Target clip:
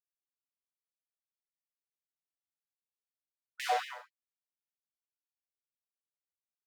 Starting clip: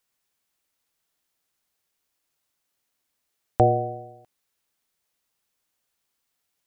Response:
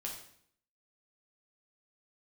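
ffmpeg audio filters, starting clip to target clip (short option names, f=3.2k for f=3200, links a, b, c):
-filter_complex "[0:a]aeval=exprs='sgn(val(0))*max(abs(val(0))-0.0211,0)':c=same[a];[1:a]atrim=start_sample=2205,atrim=end_sample=3528[b];[a][b]afir=irnorm=-1:irlink=0,afftfilt=real='re*gte(b*sr/1024,440*pow(1800/440,0.5+0.5*sin(2*PI*4.2*pts/sr)))':imag='im*gte(b*sr/1024,440*pow(1800/440,0.5+0.5*sin(2*PI*4.2*pts/sr)))':win_size=1024:overlap=0.75,volume=6.5dB"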